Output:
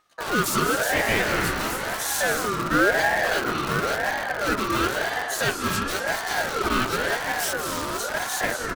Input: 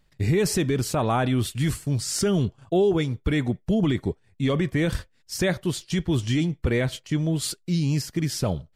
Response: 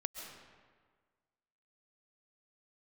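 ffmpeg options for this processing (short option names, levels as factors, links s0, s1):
-filter_complex "[0:a]asplit=4[s0][s1][s2][s3];[s1]asetrate=22050,aresample=44100,atempo=2,volume=0.141[s4];[s2]asetrate=35002,aresample=44100,atempo=1.25992,volume=0.158[s5];[s3]asetrate=66075,aresample=44100,atempo=0.66742,volume=0.891[s6];[s0][s4][s5][s6]amix=inputs=4:normalize=0[s7];[1:a]atrim=start_sample=2205,asetrate=29988,aresample=44100[s8];[s7][s8]afir=irnorm=-1:irlink=0,asplit=2[s9][s10];[s10]aeval=exprs='(mod(7.08*val(0)+1,2)-1)/7.08':c=same,volume=0.398[s11];[s9][s11]amix=inputs=2:normalize=0,lowshelf=f=340:t=q:w=1.5:g=-11,asplit=2[s12][s13];[s13]aecho=0:1:246:0.0891[s14];[s12][s14]amix=inputs=2:normalize=0,aeval=exprs='val(0)*sin(2*PI*1000*n/s+1000*0.25/0.96*sin(2*PI*0.96*n/s))':c=same"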